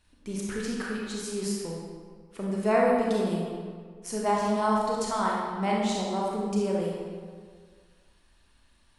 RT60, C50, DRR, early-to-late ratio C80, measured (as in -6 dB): 1.8 s, -1.0 dB, -4.0 dB, 1.0 dB